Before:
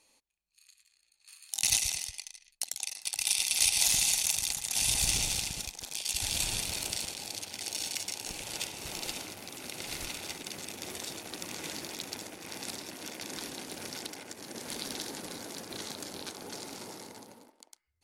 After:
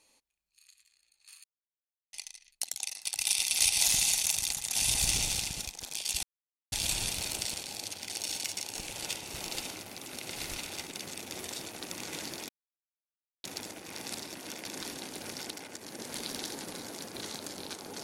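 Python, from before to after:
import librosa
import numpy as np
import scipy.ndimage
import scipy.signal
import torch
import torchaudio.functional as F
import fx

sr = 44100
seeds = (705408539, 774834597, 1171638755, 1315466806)

y = fx.edit(x, sr, fx.silence(start_s=1.44, length_s=0.69),
    fx.insert_silence(at_s=6.23, length_s=0.49),
    fx.insert_silence(at_s=12.0, length_s=0.95), tone=tone)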